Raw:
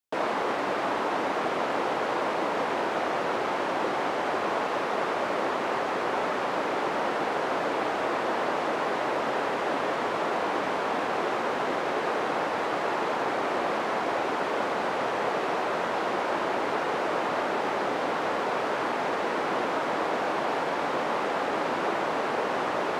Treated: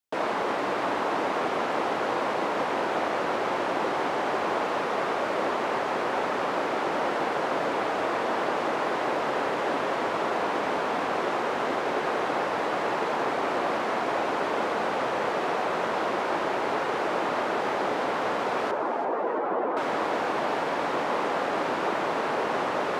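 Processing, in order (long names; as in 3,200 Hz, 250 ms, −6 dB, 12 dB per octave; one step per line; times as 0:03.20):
0:18.71–0:19.77: expanding power law on the bin magnitudes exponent 1.9
delay that swaps between a low-pass and a high-pass 168 ms, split 1,400 Hz, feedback 60%, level −8 dB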